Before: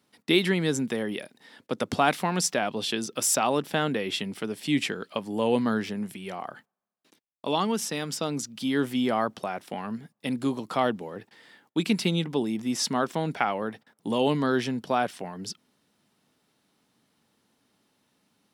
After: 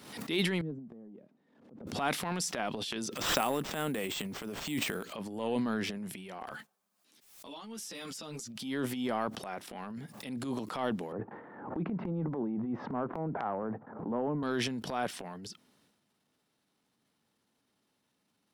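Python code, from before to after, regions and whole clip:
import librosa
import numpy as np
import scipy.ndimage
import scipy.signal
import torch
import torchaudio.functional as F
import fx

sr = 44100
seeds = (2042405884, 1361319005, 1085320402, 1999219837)

y = fx.chain(x, sr, fx.crossing_spikes(level_db=-25.0),
    fx.ladder_bandpass(hz=200.0, resonance_pct=20), at=(0.61, 1.87))
y = fx.chain(y, sr, fx.high_shelf(hz=10000.0, db=10.0),
    fx.sample_hold(seeds[0], rate_hz=11000.0, jitter_pct=0), at=(3.14, 5.13))
y = fx.chain(y, sr, fx.high_shelf(hz=2700.0, db=8.5),
    fx.over_compress(threshold_db=-33.0, ratio=-1.0),
    fx.ensemble(), at=(6.47, 8.48))
y = fx.chain(y, sr, fx.lowpass(hz=1200.0, slope=24),
    fx.band_squash(depth_pct=100), at=(11.12, 14.43))
y = fx.transient(y, sr, attack_db=-10, sustain_db=9)
y = fx.pre_swell(y, sr, db_per_s=72.0)
y = F.gain(torch.from_numpy(y), -7.5).numpy()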